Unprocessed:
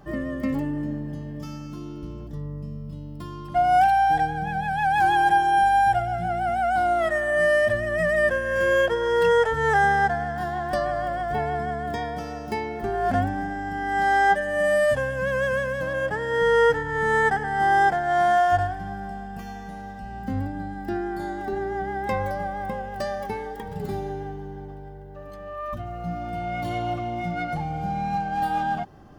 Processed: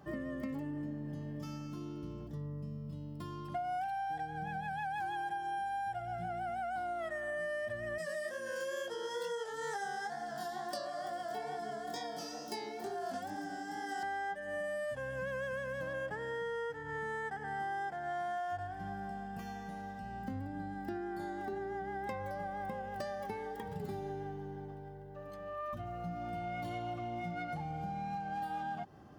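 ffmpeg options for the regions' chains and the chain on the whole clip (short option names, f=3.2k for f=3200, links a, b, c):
-filter_complex "[0:a]asettb=1/sr,asplit=3[a][b][c];[a]atrim=end=7.984[d];[b]atrim=start=7.98:end=14.03,asetpts=PTS-STARTPTS,afade=t=in:d=0.004:c=qsin,afade=t=out:st=6.046:d=0.004:c=qsin,highpass=230,highshelf=f=3.3k:t=q:w=1.5:g=10.5,flanger=delay=17:depth=7.6:speed=2.2[e];[c]atrim=start=14.026[f];[d][e]acrossfade=d=0.004:c1=hsin:c2=qsin[g];[g][f]acrossfade=d=0.004:c1=qsin:c2=hsin,highpass=78,acompressor=threshold=-30dB:ratio=6,volume=-6.5dB"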